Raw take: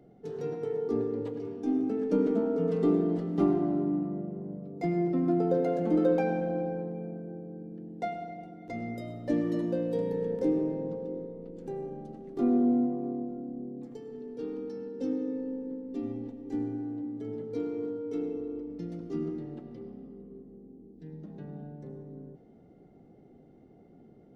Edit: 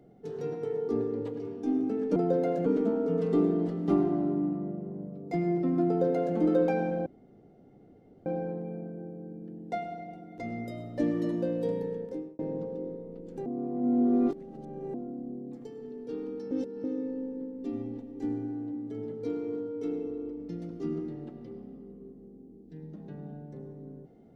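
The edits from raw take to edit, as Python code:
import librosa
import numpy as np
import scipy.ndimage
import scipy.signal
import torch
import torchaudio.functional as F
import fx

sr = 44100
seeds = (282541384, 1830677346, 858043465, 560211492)

y = fx.edit(x, sr, fx.duplicate(start_s=5.37, length_s=0.5, to_s=2.16),
    fx.insert_room_tone(at_s=6.56, length_s=1.2),
    fx.fade_out_span(start_s=10.0, length_s=0.69),
    fx.reverse_span(start_s=11.76, length_s=1.48),
    fx.reverse_span(start_s=14.81, length_s=0.33), tone=tone)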